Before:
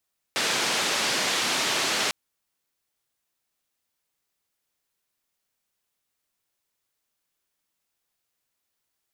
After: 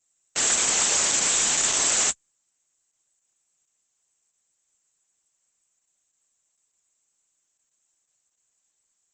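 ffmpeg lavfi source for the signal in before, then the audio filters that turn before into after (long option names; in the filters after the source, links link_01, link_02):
-f lavfi -i "anoisesrc=color=white:duration=1.75:sample_rate=44100:seed=1,highpass=frequency=190,lowpass=frequency=5200,volume=-14.5dB"
-af "aexciter=amount=11.1:drive=6.9:freq=7100,volume=15dB,asoftclip=hard,volume=-15dB" -ar 48000 -c:a libopus -b:a 10k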